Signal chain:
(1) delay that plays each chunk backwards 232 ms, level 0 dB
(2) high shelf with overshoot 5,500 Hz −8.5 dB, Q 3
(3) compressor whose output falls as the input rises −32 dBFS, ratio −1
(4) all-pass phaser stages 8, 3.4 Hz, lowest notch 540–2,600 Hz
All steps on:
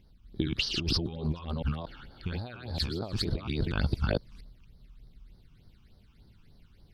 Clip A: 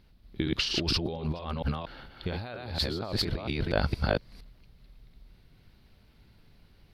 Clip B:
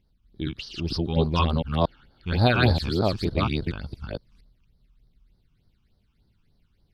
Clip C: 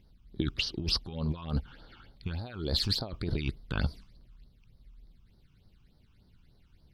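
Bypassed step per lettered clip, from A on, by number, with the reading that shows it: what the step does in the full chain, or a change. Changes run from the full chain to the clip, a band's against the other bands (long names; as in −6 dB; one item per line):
4, change in crest factor +2.5 dB
3, change in momentary loudness spread +6 LU
1, 4 kHz band +3.0 dB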